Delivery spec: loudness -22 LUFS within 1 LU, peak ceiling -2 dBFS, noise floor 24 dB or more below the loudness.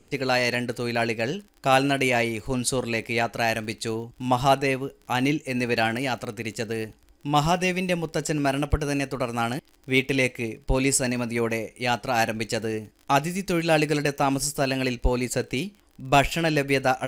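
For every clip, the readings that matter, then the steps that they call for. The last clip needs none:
ticks 34/s; loudness -25.0 LUFS; peak -8.0 dBFS; loudness target -22.0 LUFS
-> de-click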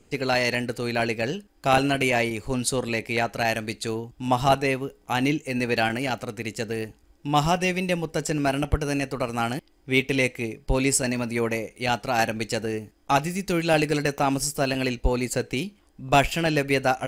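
ticks 1.3/s; loudness -25.0 LUFS; peak -7.0 dBFS; loudness target -22.0 LUFS
-> gain +3 dB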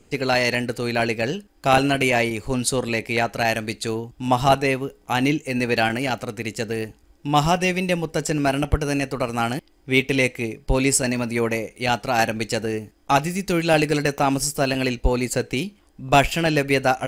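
loudness -22.0 LUFS; peak -4.0 dBFS; noise floor -56 dBFS

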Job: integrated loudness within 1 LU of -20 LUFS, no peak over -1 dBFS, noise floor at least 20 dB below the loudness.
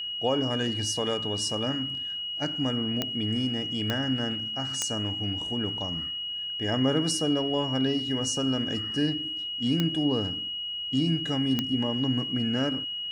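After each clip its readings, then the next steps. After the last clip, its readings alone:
clicks 5; steady tone 2900 Hz; tone level -31 dBFS; loudness -27.5 LUFS; peak -10.5 dBFS; loudness target -20.0 LUFS
-> de-click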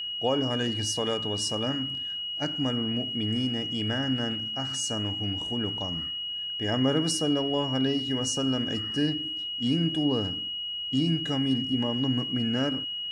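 clicks 0; steady tone 2900 Hz; tone level -31 dBFS
-> notch 2900 Hz, Q 30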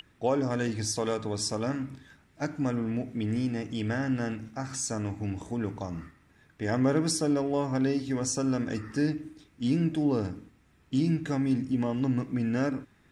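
steady tone none; loudness -30.0 LUFS; peak -13.5 dBFS; loudness target -20.0 LUFS
-> gain +10 dB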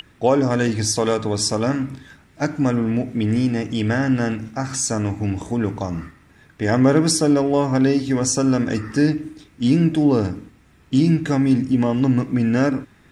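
loudness -20.0 LUFS; peak -3.5 dBFS; noise floor -52 dBFS

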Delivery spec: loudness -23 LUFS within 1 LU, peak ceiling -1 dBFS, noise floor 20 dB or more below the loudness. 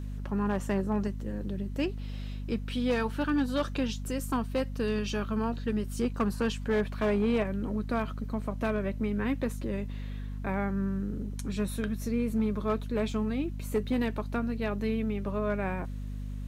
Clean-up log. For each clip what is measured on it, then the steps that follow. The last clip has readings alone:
clipped 0.6%; flat tops at -21.0 dBFS; hum 50 Hz; harmonics up to 250 Hz; hum level -34 dBFS; loudness -31.5 LUFS; peak -21.0 dBFS; loudness target -23.0 LUFS
-> clip repair -21 dBFS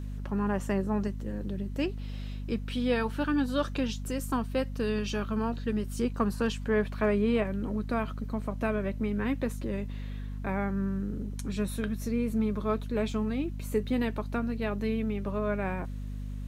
clipped 0.0%; hum 50 Hz; harmonics up to 250 Hz; hum level -34 dBFS
-> de-hum 50 Hz, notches 5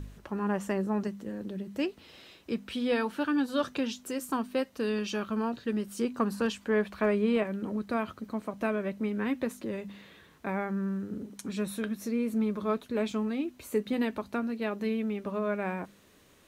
hum none; loudness -32.0 LUFS; peak -15.5 dBFS; loudness target -23.0 LUFS
-> gain +9 dB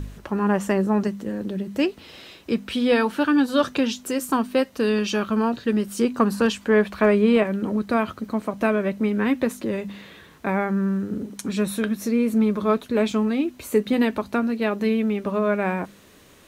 loudness -23.0 LUFS; peak -6.5 dBFS; noise floor -50 dBFS

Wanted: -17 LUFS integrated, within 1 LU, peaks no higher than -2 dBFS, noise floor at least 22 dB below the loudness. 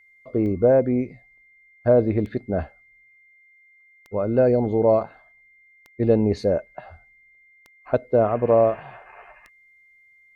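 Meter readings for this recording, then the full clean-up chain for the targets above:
clicks 6; steady tone 2100 Hz; tone level -53 dBFS; loudness -21.5 LUFS; peak -7.0 dBFS; loudness target -17.0 LUFS
-> de-click; notch 2100 Hz, Q 30; gain +4.5 dB

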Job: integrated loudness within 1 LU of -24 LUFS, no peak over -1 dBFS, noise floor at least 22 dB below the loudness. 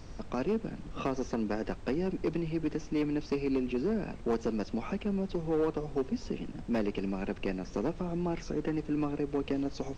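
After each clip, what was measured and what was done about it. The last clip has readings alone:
clipped 1.6%; flat tops at -23.5 dBFS; noise floor -45 dBFS; noise floor target -56 dBFS; loudness -33.5 LUFS; peak -23.5 dBFS; loudness target -24.0 LUFS
-> clip repair -23.5 dBFS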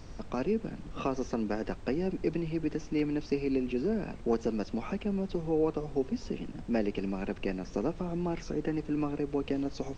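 clipped 0.0%; noise floor -45 dBFS; noise floor target -55 dBFS
-> noise print and reduce 10 dB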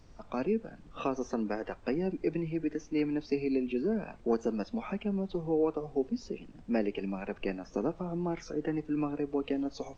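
noise floor -54 dBFS; noise floor target -56 dBFS
-> noise print and reduce 6 dB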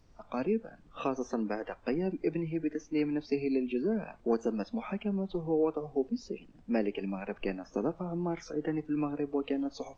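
noise floor -58 dBFS; loudness -33.5 LUFS; peak -17.0 dBFS; loudness target -24.0 LUFS
-> gain +9.5 dB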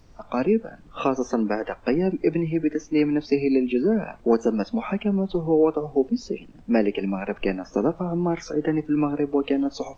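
loudness -24.0 LUFS; peak -7.5 dBFS; noise floor -49 dBFS

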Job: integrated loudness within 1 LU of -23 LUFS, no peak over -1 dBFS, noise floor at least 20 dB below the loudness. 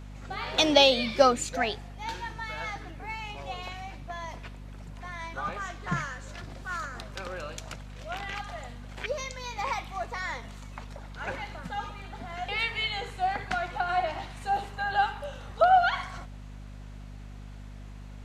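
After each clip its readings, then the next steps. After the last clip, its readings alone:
hum 50 Hz; harmonics up to 250 Hz; hum level -41 dBFS; loudness -29.5 LUFS; peak -5.5 dBFS; loudness target -23.0 LUFS
-> notches 50/100/150/200/250 Hz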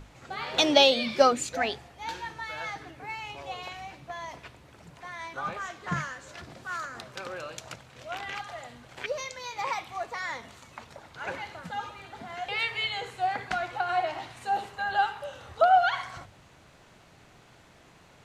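hum none; loudness -29.5 LUFS; peak -5.5 dBFS; loudness target -23.0 LUFS
-> gain +6.5 dB; limiter -1 dBFS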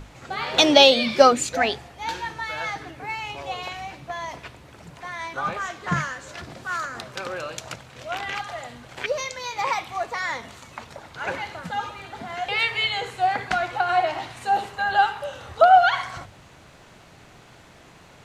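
loudness -23.0 LUFS; peak -1.0 dBFS; noise floor -50 dBFS

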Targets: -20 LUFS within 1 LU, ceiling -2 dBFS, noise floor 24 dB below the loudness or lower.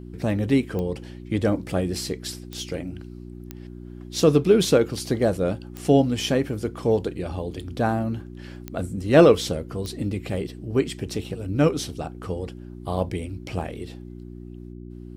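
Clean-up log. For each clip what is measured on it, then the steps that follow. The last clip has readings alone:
clicks 6; hum 60 Hz; harmonics up to 360 Hz; hum level -36 dBFS; loudness -24.0 LUFS; peak -4.0 dBFS; loudness target -20.0 LUFS
-> de-click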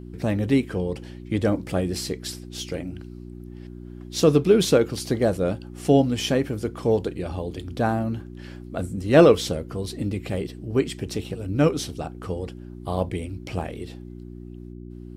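clicks 0; hum 60 Hz; harmonics up to 360 Hz; hum level -36 dBFS
-> de-hum 60 Hz, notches 6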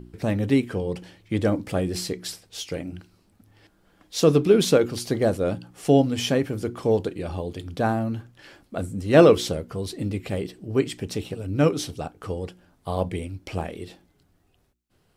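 hum none; loudness -24.0 LUFS; peak -4.0 dBFS; loudness target -20.0 LUFS
-> gain +4 dB; limiter -2 dBFS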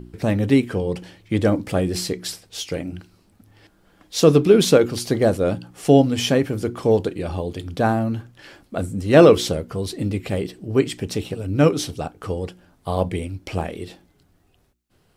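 loudness -20.5 LUFS; peak -2.0 dBFS; noise floor -61 dBFS

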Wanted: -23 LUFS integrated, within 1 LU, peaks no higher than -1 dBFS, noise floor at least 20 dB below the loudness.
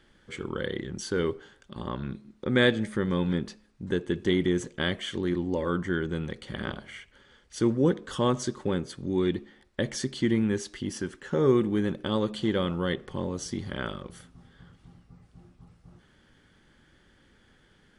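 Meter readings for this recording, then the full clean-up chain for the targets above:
loudness -29.0 LUFS; peak -8.0 dBFS; loudness target -23.0 LUFS
-> gain +6 dB

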